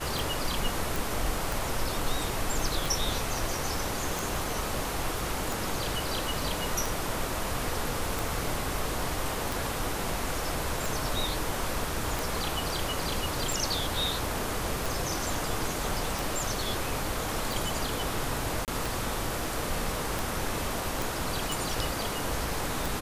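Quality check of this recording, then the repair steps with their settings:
tick 45 rpm
0.96 s: pop
18.65–18.68 s: dropout 28 ms
21.02 s: pop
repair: de-click; interpolate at 18.65 s, 28 ms

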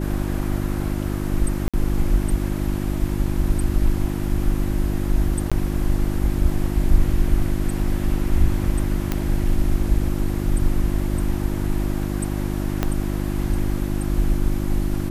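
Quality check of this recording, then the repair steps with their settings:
hum 50 Hz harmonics 7 -25 dBFS
1.68–1.74 s: dropout 56 ms
5.50–5.52 s: dropout 16 ms
9.12 s: pop -8 dBFS
12.83 s: pop -7 dBFS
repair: de-click; de-hum 50 Hz, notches 7; interpolate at 1.68 s, 56 ms; interpolate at 5.50 s, 16 ms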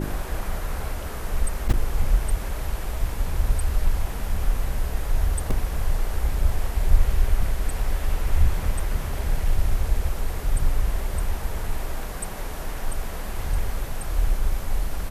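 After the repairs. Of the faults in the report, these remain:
12.83 s: pop

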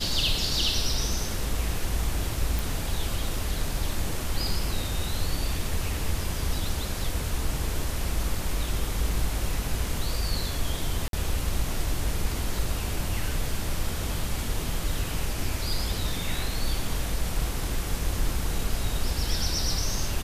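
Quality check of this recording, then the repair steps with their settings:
2.59 s: pop
11.08–11.13 s: dropout 52 ms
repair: de-click; interpolate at 11.08 s, 52 ms

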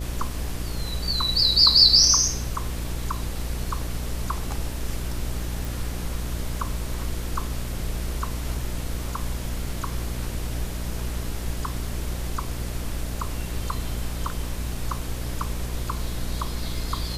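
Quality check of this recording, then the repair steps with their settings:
buzz 60 Hz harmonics 11 -31 dBFS
5.65 s: pop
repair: de-click; de-hum 60 Hz, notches 11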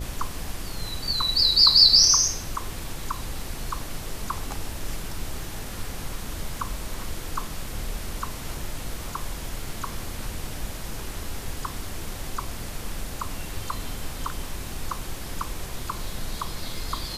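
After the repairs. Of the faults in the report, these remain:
nothing left

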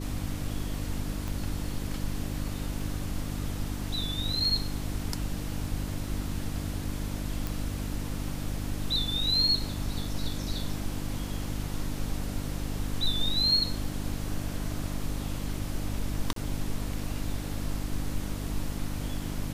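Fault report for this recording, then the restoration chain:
hum 50 Hz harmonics 6 -35 dBFS
1.28 s: pop
7.47 s: pop
16.33–16.36 s: dropout 33 ms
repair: de-click; de-hum 50 Hz, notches 6; interpolate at 16.33 s, 33 ms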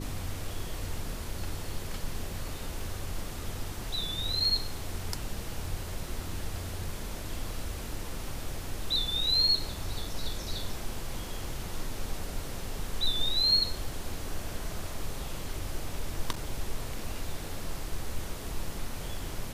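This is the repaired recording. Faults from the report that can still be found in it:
1.28 s: pop

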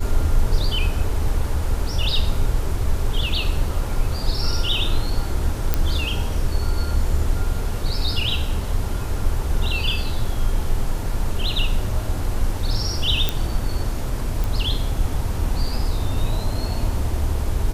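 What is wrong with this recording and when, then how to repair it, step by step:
5.74 s: pop -5 dBFS
13.29 s: pop
14.44 s: pop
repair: de-click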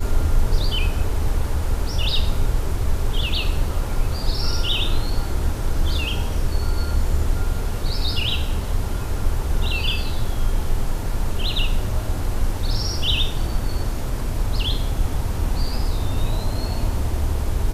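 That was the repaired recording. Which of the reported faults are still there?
nothing left

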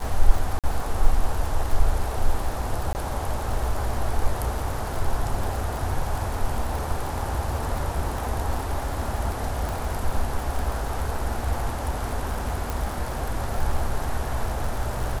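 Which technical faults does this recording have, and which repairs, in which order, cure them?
crackle 52 per s -28 dBFS
0.59–0.64 s: dropout 47 ms
2.93–2.95 s: dropout 19 ms
9.69 s: pop
12.70 s: pop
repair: de-click; interpolate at 0.59 s, 47 ms; interpolate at 2.93 s, 19 ms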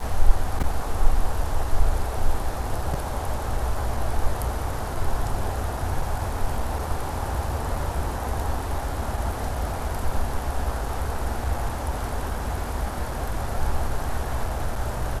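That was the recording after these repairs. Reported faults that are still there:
nothing left

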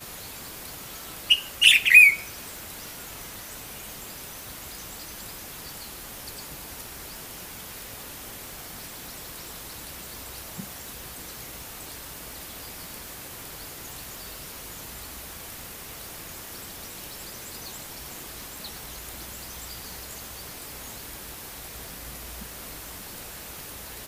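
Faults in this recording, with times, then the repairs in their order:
crackle 39 per s -35 dBFS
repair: de-click

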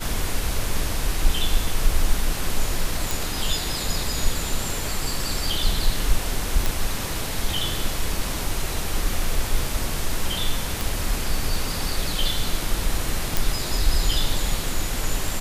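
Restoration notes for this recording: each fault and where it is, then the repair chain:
3.11 s: pop
6.66 s: pop
10.81 s: pop
13.37 s: pop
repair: de-click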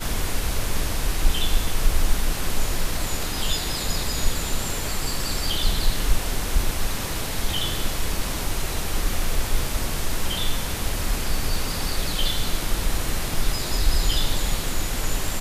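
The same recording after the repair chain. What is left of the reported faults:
nothing left

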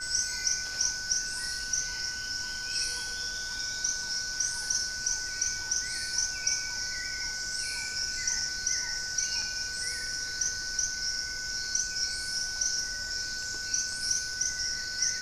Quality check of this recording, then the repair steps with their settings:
whine 1.5 kHz -37 dBFS
9.42 s: dropout 2.7 ms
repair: band-stop 1.5 kHz, Q 30; interpolate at 9.42 s, 2.7 ms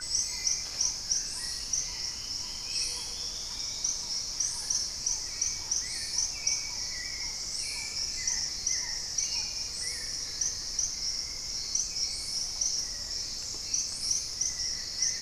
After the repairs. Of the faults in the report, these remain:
nothing left

